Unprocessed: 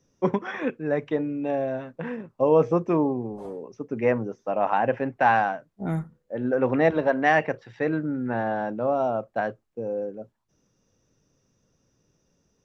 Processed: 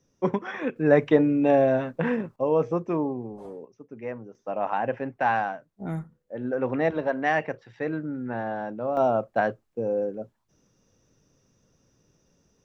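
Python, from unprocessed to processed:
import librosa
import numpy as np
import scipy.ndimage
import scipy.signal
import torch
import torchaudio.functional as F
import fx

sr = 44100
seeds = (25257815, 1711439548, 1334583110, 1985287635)

y = fx.gain(x, sr, db=fx.steps((0.0, -1.5), (0.76, 7.0), (2.36, -4.0), (3.65, -12.0), (4.35, -4.0), (8.97, 3.0)))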